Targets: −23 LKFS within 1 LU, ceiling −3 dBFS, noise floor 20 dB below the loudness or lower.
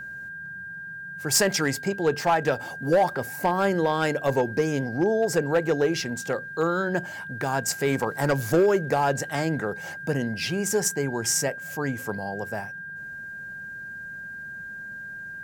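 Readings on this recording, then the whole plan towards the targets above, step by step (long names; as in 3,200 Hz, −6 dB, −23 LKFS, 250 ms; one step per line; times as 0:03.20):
share of clipped samples 0.5%; peaks flattened at −14.5 dBFS; interfering tone 1,600 Hz; level of the tone −35 dBFS; integrated loudness −25.0 LKFS; sample peak −14.5 dBFS; target loudness −23.0 LKFS
→ clipped peaks rebuilt −14.5 dBFS
notch filter 1,600 Hz, Q 30
level +2 dB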